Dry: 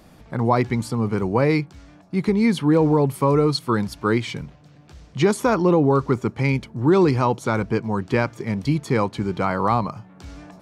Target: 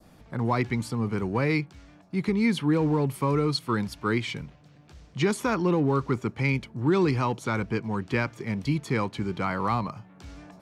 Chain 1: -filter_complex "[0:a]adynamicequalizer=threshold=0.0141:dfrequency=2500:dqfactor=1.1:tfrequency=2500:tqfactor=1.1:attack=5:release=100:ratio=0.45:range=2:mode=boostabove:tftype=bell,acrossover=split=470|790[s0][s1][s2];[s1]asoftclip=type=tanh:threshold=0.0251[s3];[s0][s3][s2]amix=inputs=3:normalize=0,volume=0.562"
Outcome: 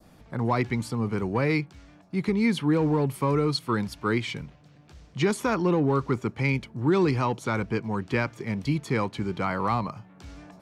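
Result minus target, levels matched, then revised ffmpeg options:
saturation: distortion -4 dB
-filter_complex "[0:a]adynamicequalizer=threshold=0.0141:dfrequency=2500:dqfactor=1.1:tfrequency=2500:tqfactor=1.1:attack=5:release=100:ratio=0.45:range=2:mode=boostabove:tftype=bell,acrossover=split=470|790[s0][s1][s2];[s1]asoftclip=type=tanh:threshold=0.0106[s3];[s0][s3][s2]amix=inputs=3:normalize=0,volume=0.562"

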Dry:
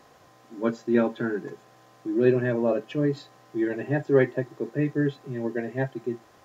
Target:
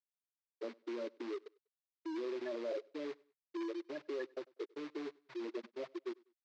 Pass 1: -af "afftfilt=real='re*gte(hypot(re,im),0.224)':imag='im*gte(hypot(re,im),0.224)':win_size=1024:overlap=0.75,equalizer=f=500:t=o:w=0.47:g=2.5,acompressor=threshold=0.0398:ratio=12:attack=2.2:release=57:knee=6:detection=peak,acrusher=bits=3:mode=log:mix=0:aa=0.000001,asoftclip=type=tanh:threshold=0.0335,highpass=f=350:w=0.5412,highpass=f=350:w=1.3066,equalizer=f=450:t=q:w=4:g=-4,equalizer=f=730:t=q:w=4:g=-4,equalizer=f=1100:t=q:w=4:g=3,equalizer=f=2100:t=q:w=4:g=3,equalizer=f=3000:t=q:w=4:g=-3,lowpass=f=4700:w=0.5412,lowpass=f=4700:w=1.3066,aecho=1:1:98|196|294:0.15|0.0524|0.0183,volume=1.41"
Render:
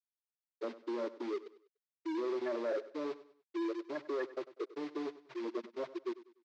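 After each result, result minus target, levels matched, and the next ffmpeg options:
echo-to-direct +9.5 dB; compression: peak gain reduction -6 dB
-af "afftfilt=real='re*gte(hypot(re,im),0.224)':imag='im*gte(hypot(re,im),0.224)':win_size=1024:overlap=0.75,equalizer=f=500:t=o:w=0.47:g=2.5,acompressor=threshold=0.0398:ratio=12:attack=2.2:release=57:knee=6:detection=peak,acrusher=bits=3:mode=log:mix=0:aa=0.000001,asoftclip=type=tanh:threshold=0.0335,highpass=f=350:w=0.5412,highpass=f=350:w=1.3066,equalizer=f=450:t=q:w=4:g=-4,equalizer=f=730:t=q:w=4:g=-4,equalizer=f=1100:t=q:w=4:g=3,equalizer=f=2100:t=q:w=4:g=3,equalizer=f=3000:t=q:w=4:g=-3,lowpass=f=4700:w=0.5412,lowpass=f=4700:w=1.3066,aecho=1:1:98|196:0.0501|0.0175,volume=1.41"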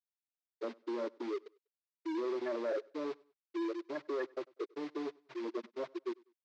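compression: peak gain reduction -6 dB
-af "afftfilt=real='re*gte(hypot(re,im),0.224)':imag='im*gte(hypot(re,im),0.224)':win_size=1024:overlap=0.75,equalizer=f=500:t=o:w=0.47:g=2.5,acompressor=threshold=0.0188:ratio=12:attack=2.2:release=57:knee=6:detection=peak,acrusher=bits=3:mode=log:mix=0:aa=0.000001,asoftclip=type=tanh:threshold=0.0335,highpass=f=350:w=0.5412,highpass=f=350:w=1.3066,equalizer=f=450:t=q:w=4:g=-4,equalizer=f=730:t=q:w=4:g=-4,equalizer=f=1100:t=q:w=4:g=3,equalizer=f=2100:t=q:w=4:g=3,equalizer=f=3000:t=q:w=4:g=-3,lowpass=f=4700:w=0.5412,lowpass=f=4700:w=1.3066,aecho=1:1:98|196:0.0501|0.0175,volume=1.41"

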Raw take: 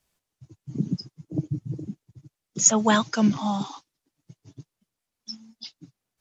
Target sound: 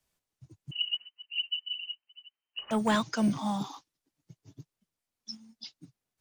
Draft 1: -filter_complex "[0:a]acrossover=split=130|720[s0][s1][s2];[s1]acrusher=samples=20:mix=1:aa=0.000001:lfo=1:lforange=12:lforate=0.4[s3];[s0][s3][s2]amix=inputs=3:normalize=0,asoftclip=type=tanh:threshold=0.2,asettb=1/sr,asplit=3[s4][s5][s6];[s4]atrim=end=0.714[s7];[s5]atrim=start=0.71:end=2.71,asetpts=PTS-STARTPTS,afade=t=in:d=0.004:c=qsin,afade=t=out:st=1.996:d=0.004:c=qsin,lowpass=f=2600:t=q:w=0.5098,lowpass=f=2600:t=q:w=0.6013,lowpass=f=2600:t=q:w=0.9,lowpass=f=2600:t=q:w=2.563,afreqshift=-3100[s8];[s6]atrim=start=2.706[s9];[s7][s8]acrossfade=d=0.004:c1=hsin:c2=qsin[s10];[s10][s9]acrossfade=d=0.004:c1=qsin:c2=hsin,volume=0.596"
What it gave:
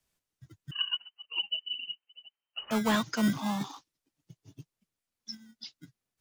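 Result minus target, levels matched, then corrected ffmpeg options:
decimation with a swept rate: distortion +16 dB
-filter_complex "[0:a]acrossover=split=130|720[s0][s1][s2];[s1]acrusher=samples=4:mix=1:aa=0.000001:lfo=1:lforange=2.4:lforate=0.4[s3];[s0][s3][s2]amix=inputs=3:normalize=0,asoftclip=type=tanh:threshold=0.2,asettb=1/sr,asplit=3[s4][s5][s6];[s4]atrim=end=0.714[s7];[s5]atrim=start=0.71:end=2.71,asetpts=PTS-STARTPTS,afade=t=in:d=0.004:c=qsin,afade=t=out:st=1.996:d=0.004:c=qsin,lowpass=f=2600:t=q:w=0.5098,lowpass=f=2600:t=q:w=0.6013,lowpass=f=2600:t=q:w=0.9,lowpass=f=2600:t=q:w=2.563,afreqshift=-3100[s8];[s6]atrim=start=2.706[s9];[s7][s8]acrossfade=d=0.004:c1=hsin:c2=qsin[s10];[s10][s9]acrossfade=d=0.004:c1=qsin:c2=hsin,volume=0.596"

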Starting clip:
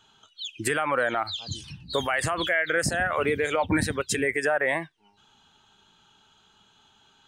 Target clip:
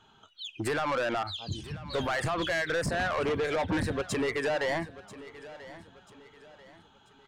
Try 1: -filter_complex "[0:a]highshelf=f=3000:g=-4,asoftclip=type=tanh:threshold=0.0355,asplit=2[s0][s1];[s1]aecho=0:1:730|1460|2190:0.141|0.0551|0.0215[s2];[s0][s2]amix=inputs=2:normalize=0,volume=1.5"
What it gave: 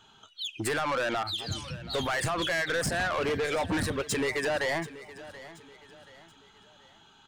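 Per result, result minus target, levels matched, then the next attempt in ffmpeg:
8 kHz band +5.5 dB; echo 258 ms early
-filter_complex "[0:a]highshelf=f=3000:g=-14,asoftclip=type=tanh:threshold=0.0355,asplit=2[s0][s1];[s1]aecho=0:1:730|1460|2190:0.141|0.0551|0.0215[s2];[s0][s2]amix=inputs=2:normalize=0,volume=1.5"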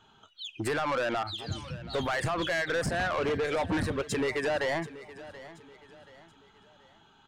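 echo 258 ms early
-filter_complex "[0:a]highshelf=f=3000:g=-14,asoftclip=type=tanh:threshold=0.0355,asplit=2[s0][s1];[s1]aecho=0:1:988|1976|2964:0.141|0.0551|0.0215[s2];[s0][s2]amix=inputs=2:normalize=0,volume=1.5"

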